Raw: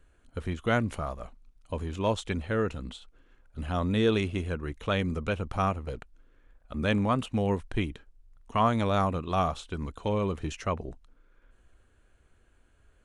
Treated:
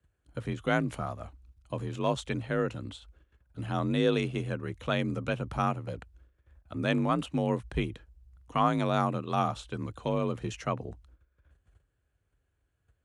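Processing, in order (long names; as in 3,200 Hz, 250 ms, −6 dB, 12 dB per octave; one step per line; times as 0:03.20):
noise gate −56 dBFS, range −13 dB
frequency shifter +38 Hz
level −1.5 dB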